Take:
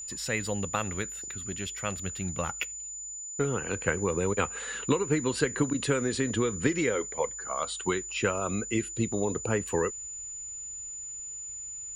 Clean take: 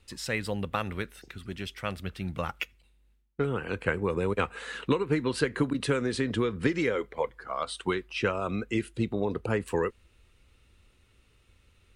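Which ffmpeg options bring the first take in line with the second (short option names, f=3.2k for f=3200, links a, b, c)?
-af "bandreject=f=7k:w=30"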